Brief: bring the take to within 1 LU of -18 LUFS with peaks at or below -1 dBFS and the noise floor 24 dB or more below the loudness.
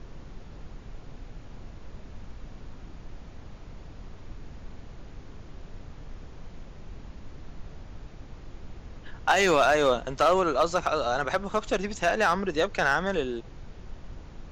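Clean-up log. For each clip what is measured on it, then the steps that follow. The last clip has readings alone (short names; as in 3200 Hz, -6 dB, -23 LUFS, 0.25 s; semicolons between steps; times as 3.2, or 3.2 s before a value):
clipped 0.2%; flat tops at -14.5 dBFS; noise floor -46 dBFS; noise floor target -49 dBFS; loudness -25.0 LUFS; peak -14.5 dBFS; loudness target -18.0 LUFS
-> clip repair -14.5 dBFS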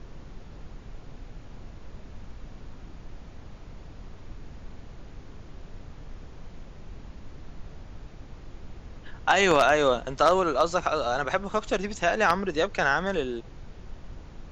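clipped 0.0%; noise floor -46 dBFS; noise floor target -49 dBFS
-> noise print and reduce 6 dB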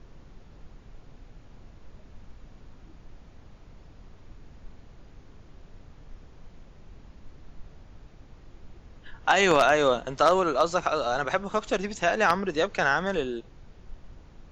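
noise floor -52 dBFS; loudness -24.5 LUFS; peak -5.5 dBFS; loudness target -18.0 LUFS
-> gain +6.5 dB; limiter -1 dBFS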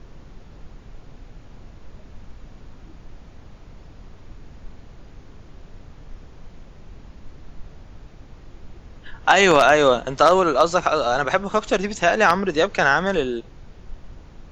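loudness -18.0 LUFS; peak -1.0 dBFS; noise floor -45 dBFS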